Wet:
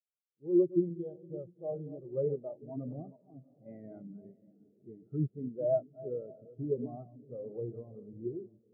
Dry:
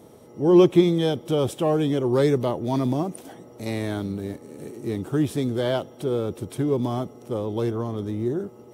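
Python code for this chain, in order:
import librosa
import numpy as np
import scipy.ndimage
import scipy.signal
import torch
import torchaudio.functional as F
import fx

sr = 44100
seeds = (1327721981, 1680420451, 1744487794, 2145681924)

y = fx.reverse_delay(x, sr, ms=226, wet_db=-7.5)
y = scipy.signal.sosfilt(scipy.signal.butter(6, 3000.0, 'lowpass', fs=sr, output='sos'), y)
y = fx.peak_eq(y, sr, hz=95.0, db=-13.0, octaves=0.41)
y = y + 0.35 * np.pad(y, (int(1.5 * sr / 1000.0), 0))[:len(y)]
y = fx.rider(y, sr, range_db=4, speed_s=2.0)
y = fx.echo_diffused(y, sr, ms=604, feedback_pct=43, wet_db=-9.0)
y = fx.spectral_expand(y, sr, expansion=2.5)
y = F.gain(torch.from_numpy(y), -7.5).numpy()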